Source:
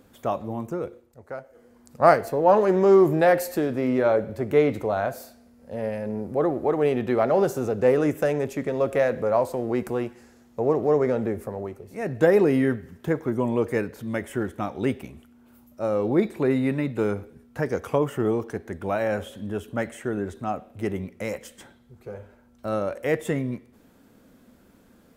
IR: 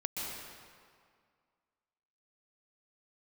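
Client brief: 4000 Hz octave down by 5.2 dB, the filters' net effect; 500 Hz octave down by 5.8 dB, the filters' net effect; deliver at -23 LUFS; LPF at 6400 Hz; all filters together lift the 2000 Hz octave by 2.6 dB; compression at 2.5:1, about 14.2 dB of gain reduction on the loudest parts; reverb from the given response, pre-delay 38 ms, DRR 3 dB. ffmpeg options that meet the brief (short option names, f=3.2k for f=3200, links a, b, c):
-filter_complex "[0:a]lowpass=6.4k,equalizer=f=500:t=o:g=-7.5,equalizer=f=2k:t=o:g=5.5,equalizer=f=4k:t=o:g=-9,acompressor=threshold=-35dB:ratio=2.5,asplit=2[a][b];[1:a]atrim=start_sample=2205,adelay=38[c];[b][c]afir=irnorm=-1:irlink=0,volume=-6.5dB[d];[a][d]amix=inputs=2:normalize=0,volume=12dB"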